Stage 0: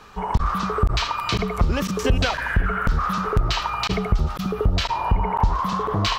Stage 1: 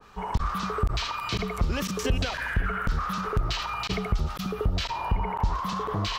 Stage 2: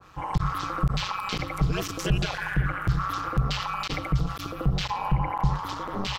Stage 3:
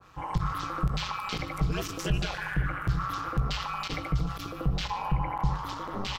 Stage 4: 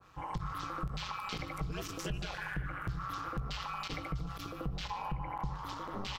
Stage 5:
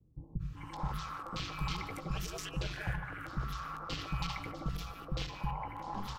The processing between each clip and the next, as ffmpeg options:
ffmpeg -i in.wav -filter_complex "[0:a]acrossover=split=540[link_01][link_02];[link_02]alimiter=limit=-19.5dB:level=0:latency=1:release=30[link_03];[link_01][link_03]amix=inputs=2:normalize=0,adynamicequalizer=threshold=0.00891:dfrequency=1600:dqfactor=0.7:tfrequency=1600:tqfactor=0.7:attack=5:release=100:ratio=0.375:range=2.5:mode=boostabove:tftype=highshelf,volume=-6dB" out.wav
ffmpeg -i in.wav -af "aecho=1:1:3.2:0.96,aeval=exprs='val(0)*sin(2*PI*95*n/s)':channel_layout=same" out.wav
ffmpeg -i in.wav -filter_complex "[0:a]asplit=2[link_01][link_02];[link_02]adelay=18,volume=-12dB[link_03];[link_01][link_03]amix=inputs=2:normalize=0,aecho=1:1:149:0.133,volume=-3.5dB" out.wav
ffmpeg -i in.wav -af "acompressor=threshold=-29dB:ratio=3,volume=-5dB" out.wav
ffmpeg -i in.wav -filter_complex "[0:a]acrossover=split=340|1300[link_01][link_02][link_03];[link_03]adelay=390[link_04];[link_02]adelay=560[link_05];[link_01][link_05][link_04]amix=inputs=3:normalize=0,volume=1dB" out.wav

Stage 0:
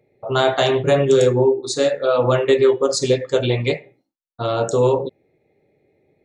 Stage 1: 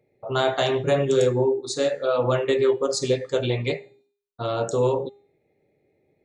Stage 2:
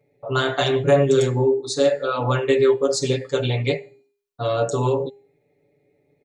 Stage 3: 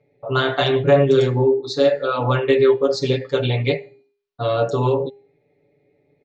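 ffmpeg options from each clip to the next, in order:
ffmpeg -i in.wav -af "bandreject=frequency=405.2:width_type=h:width=4,bandreject=frequency=810.4:width_type=h:width=4,bandreject=frequency=1215.6:width_type=h:width=4,bandreject=frequency=1620.8:width_type=h:width=4,bandreject=frequency=2026:width_type=h:width=4,bandreject=frequency=2431.2:width_type=h:width=4,bandreject=frequency=2836.4:width_type=h:width=4,bandreject=frequency=3241.6:width_type=h:width=4,bandreject=frequency=3646.8:width_type=h:width=4,bandreject=frequency=4052:width_type=h:width=4,bandreject=frequency=4457.2:width_type=h:width=4,bandreject=frequency=4862.4:width_type=h:width=4,bandreject=frequency=5267.6:width_type=h:width=4,bandreject=frequency=5672.8:width_type=h:width=4,bandreject=frequency=6078:width_type=h:width=4,bandreject=frequency=6483.2:width_type=h:width=4,bandreject=frequency=6888.4:width_type=h:width=4,bandreject=frequency=7293.6:width_type=h:width=4,bandreject=frequency=7698.8:width_type=h:width=4,bandreject=frequency=8104:width_type=h:width=4,bandreject=frequency=8509.2:width_type=h:width=4,bandreject=frequency=8914.4:width_type=h:width=4,bandreject=frequency=9319.6:width_type=h:width=4,bandreject=frequency=9724.8:width_type=h:width=4,volume=-5dB" out.wav
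ffmpeg -i in.wav -af "aecho=1:1:7:0.93" out.wav
ffmpeg -i in.wav -af "lowpass=frequency=4800:width=0.5412,lowpass=frequency=4800:width=1.3066,volume=2dB" out.wav

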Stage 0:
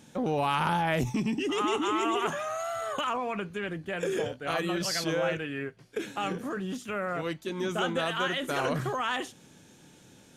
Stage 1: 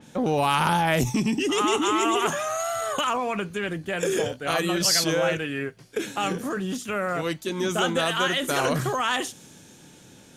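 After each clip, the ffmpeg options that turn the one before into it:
ffmpeg -i in.wav -af "adynamicequalizer=threshold=0.00398:dfrequency=4100:dqfactor=0.7:tfrequency=4100:tqfactor=0.7:attack=5:release=100:ratio=0.375:range=4:mode=boostabove:tftype=highshelf,volume=5dB" out.wav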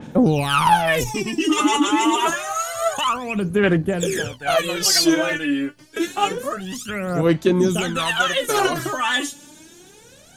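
ffmpeg -i in.wav -af "aphaser=in_gain=1:out_gain=1:delay=3.5:decay=0.8:speed=0.27:type=sinusoidal" out.wav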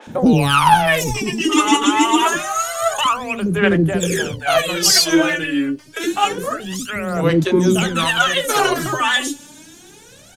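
ffmpeg -i in.wav -filter_complex "[0:a]acrossover=split=450[link_01][link_02];[link_01]adelay=70[link_03];[link_03][link_02]amix=inputs=2:normalize=0,volume=4dB" out.wav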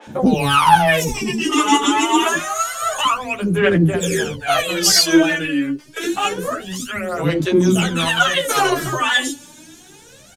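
ffmpeg -i in.wav -filter_complex "[0:a]asplit=2[link_01][link_02];[link_02]adelay=10.9,afreqshift=-0.69[link_03];[link_01][link_03]amix=inputs=2:normalize=1,volume=2.5dB" out.wav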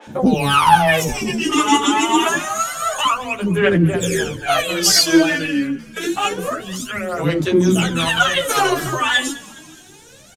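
ffmpeg -i in.wav -filter_complex "[0:a]asplit=4[link_01][link_02][link_03][link_04];[link_02]adelay=207,afreqshift=-55,volume=-20dB[link_05];[link_03]adelay=414,afreqshift=-110,volume=-26.7dB[link_06];[link_04]adelay=621,afreqshift=-165,volume=-33.5dB[link_07];[link_01][link_05][link_06][link_07]amix=inputs=4:normalize=0" out.wav

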